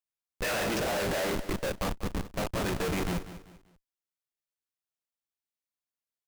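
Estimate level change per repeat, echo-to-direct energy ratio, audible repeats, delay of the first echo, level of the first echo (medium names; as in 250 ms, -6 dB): -9.5 dB, -13.0 dB, 3, 194 ms, -13.5 dB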